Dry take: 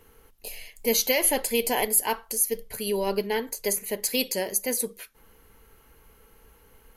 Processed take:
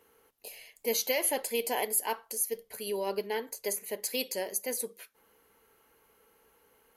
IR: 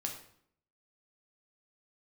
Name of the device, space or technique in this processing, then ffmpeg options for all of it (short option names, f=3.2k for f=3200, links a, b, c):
filter by subtraction: -filter_complex "[0:a]asplit=2[a][b];[b]lowpass=510,volume=-1[c];[a][c]amix=inputs=2:normalize=0,volume=-7dB"